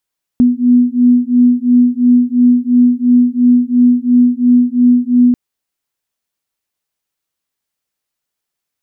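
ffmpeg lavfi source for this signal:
-f lavfi -i "aevalsrc='0.316*(sin(2*PI*244*t)+sin(2*PI*246.9*t))':d=4.94:s=44100"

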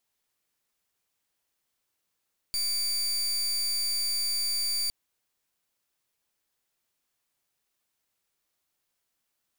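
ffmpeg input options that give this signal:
-f lavfi -i "aevalsrc='0.0376*(2*lt(mod(4650*t,1),0.31)-1)':d=2.36:s=44100"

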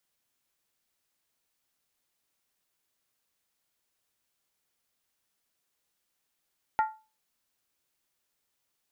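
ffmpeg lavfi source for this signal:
-f lavfi -i "aevalsrc='0.112*pow(10,-3*t/0.31)*sin(2*PI*872*t)+0.0447*pow(10,-3*t/0.246)*sin(2*PI*1390*t)+0.0178*pow(10,-3*t/0.212)*sin(2*PI*1862.6*t)+0.00708*pow(10,-3*t/0.205)*sin(2*PI*2002.1*t)+0.00282*pow(10,-3*t/0.19)*sin(2*PI*2313.4*t)':d=0.63:s=44100"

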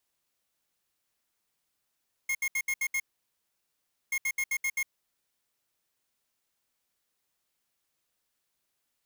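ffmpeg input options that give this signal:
-f lavfi -i "aevalsrc='0.0355*(2*lt(mod(2150*t,1),0.5)-1)*clip(min(mod(mod(t,1.83),0.13),0.06-mod(mod(t,1.83),0.13))/0.005,0,1)*lt(mod(t,1.83),0.78)':d=3.66:s=44100"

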